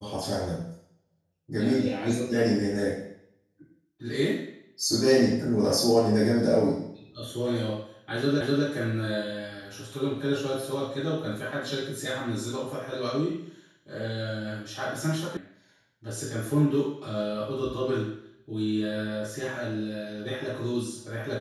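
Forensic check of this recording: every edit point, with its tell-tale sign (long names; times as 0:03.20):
0:08.41: the same again, the last 0.25 s
0:15.37: cut off before it has died away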